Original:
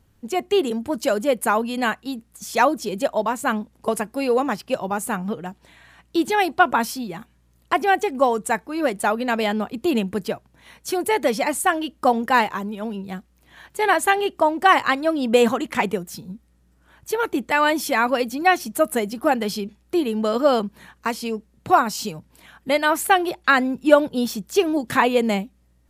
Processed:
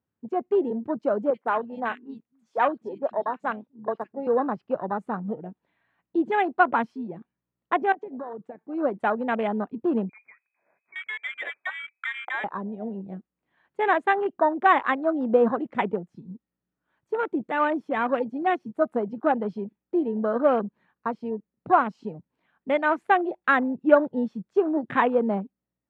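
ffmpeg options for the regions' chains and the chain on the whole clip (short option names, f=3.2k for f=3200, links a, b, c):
-filter_complex "[0:a]asettb=1/sr,asplit=3[a][b][c];[a]atrim=end=1.304[d];[b]atrim=start=1.3:end=4.27,asetpts=PTS-STARTPTS,afade=t=in:d=0.004:c=qsin,afade=t=out:st=2.966:d=0.004:c=qsin,lowshelf=f=300:g=-8,acrossover=split=190|1900[e][f][g];[g]adelay=40[h];[e]adelay=260[i];[i][f][h]amix=inputs=3:normalize=0,atrim=end_sample=130977[j];[c]atrim=start=4.266[k];[d][j]acrossfade=d=0.004:c1=hsin:c2=qsin[l];[l][k]acrossfade=d=0.004:c1=qsin:c2=hsin,asettb=1/sr,asplit=3[m][n][o];[m]atrim=end=7.924[p];[n]atrim=start=7.92:end=8.69,asetpts=PTS-STARTPTS,afade=t=in:d=0.004:c=qsin,afade=t=out:st=0.766:d=0.004:c=qsin,acompressor=threshold=-28dB:ratio=10:attack=3.2:release=140:knee=1:detection=peak,highpass=110,lowpass=4.9k[q];[o]atrim=start=8.686[r];[p][q]acrossfade=d=0.004:c1=hsin:c2=qsin[s];[s][r]acrossfade=d=0.004:c1=qsin:c2=hsin,asettb=1/sr,asplit=3[t][u][v];[t]atrim=end=10.094[w];[u]atrim=start=10.09:end=12.44,asetpts=PTS-STARTPTS,afade=t=in:d=0.004:c=qsin,afade=t=out:st=2.346:d=0.004:c=qsin,acompressor=threshold=-25dB:ratio=2.5:attack=3.2:release=140:knee=1:detection=peak,lowpass=f=2.2k:t=q:w=0.5098,lowpass=f=2.2k:t=q:w=0.6013,lowpass=f=2.2k:t=q:w=0.9,lowpass=f=2.2k:t=q:w=2.563,afreqshift=-2600[x];[v]atrim=start=12.436[y];[w][x]acrossfade=d=0.004:c1=hsin:c2=qsin[z];[z][y]acrossfade=d=0.004:c1=qsin:c2=hsin,asettb=1/sr,asplit=3[aa][ab][ac];[aa]atrim=end=16.054[ad];[ab]atrim=start=16.05:end=18.82,asetpts=PTS-STARTPTS,afade=t=in:d=0.004:c=qsin,afade=t=out:st=2.766:d=0.004:c=qsin,equalizer=f=11k:w=0.41:g=14,deesser=0.6[ae];[ac]atrim=start=18.816[af];[ad][ae]acrossfade=d=0.004:c1=hsin:c2=qsin[ag];[ag][af]acrossfade=d=0.004:c1=qsin:c2=hsin,lowpass=2.1k,afwtdn=0.0398,highpass=150,volume=-3dB"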